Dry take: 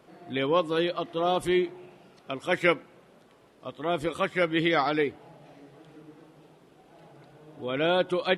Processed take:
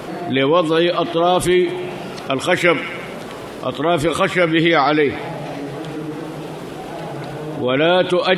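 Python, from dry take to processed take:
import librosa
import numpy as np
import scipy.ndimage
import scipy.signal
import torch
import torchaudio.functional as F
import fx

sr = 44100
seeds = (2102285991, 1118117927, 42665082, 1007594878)

p1 = x + fx.echo_wet_highpass(x, sr, ms=86, feedback_pct=52, hz=1700.0, wet_db=-18.0, dry=0)
p2 = fx.env_flatten(p1, sr, amount_pct=50)
y = F.gain(torch.from_numpy(p2), 7.5).numpy()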